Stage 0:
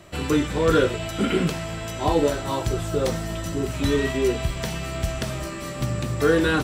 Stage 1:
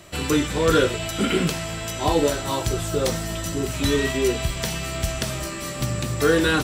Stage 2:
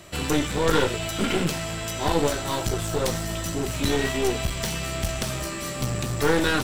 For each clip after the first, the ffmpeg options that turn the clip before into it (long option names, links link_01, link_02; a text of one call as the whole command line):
ffmpeg -i in.wav -af "highshelf=frequency=2800:gain=7.5" out.wav
ffmpeg -i in.wav -af "aeval=exprs='clip(val(0),-1,0.0422)':channel_layout=same" out.wav